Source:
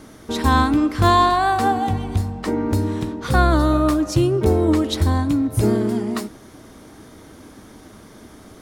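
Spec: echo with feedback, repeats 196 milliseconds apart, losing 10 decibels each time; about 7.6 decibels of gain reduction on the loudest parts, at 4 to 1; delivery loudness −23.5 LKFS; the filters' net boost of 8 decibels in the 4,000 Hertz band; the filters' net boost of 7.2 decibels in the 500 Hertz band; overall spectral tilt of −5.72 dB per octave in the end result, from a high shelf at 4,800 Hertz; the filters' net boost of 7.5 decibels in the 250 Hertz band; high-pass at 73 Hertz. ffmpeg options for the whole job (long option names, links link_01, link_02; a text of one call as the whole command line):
ffmpeg -i in.wav -af "highpass=73,equalizer=frequency=250:width_type=o:gain=7,equalizer=frequency=500:width_type=o:gain=7,equalizer=frequency=4000:width_type=o:gain=6,highshelf=frequency=4800:gain=6.5,acompressor=threshold=-16dB:ratio=4,aecho=1:1:196|392|588|784:0.316|0.101|0.0324|0.0104,volume=-5dB" out.wav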